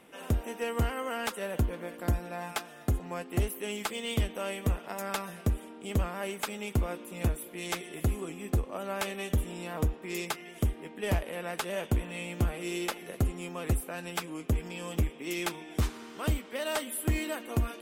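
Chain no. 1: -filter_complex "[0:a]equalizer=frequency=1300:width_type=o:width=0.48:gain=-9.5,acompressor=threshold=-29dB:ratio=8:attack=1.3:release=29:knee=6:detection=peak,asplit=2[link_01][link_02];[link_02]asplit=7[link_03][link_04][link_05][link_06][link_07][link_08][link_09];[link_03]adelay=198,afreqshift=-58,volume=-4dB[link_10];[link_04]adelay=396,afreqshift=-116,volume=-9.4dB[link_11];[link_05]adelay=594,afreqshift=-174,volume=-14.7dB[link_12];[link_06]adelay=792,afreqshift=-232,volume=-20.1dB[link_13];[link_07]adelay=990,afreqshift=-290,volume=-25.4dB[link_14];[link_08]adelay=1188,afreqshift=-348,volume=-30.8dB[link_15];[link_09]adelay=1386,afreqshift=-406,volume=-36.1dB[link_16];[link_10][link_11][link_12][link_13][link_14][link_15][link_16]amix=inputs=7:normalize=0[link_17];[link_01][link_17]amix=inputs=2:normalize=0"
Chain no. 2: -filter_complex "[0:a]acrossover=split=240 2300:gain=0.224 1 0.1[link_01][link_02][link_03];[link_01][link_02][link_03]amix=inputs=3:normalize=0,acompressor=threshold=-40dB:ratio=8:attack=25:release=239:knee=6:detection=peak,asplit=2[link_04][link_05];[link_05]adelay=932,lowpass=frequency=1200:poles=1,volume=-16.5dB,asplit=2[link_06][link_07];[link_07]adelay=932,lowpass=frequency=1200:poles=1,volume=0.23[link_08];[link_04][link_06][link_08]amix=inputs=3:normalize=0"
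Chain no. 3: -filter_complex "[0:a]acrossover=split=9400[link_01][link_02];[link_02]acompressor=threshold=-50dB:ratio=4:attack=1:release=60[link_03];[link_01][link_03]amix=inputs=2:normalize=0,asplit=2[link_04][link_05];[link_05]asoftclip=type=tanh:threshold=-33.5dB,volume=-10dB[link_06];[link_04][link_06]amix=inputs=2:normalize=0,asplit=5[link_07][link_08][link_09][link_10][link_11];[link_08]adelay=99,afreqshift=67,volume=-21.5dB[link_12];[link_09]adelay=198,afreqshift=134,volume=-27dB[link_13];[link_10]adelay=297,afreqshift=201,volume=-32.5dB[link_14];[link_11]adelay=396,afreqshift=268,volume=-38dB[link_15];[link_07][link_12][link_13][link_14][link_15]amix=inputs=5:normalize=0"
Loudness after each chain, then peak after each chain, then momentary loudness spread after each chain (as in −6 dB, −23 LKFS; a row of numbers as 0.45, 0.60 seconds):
−36.0, −44.0, −32.5 LKFS; −21.0, −23.0, −19.0 dBFS; 4, 3, 4 LU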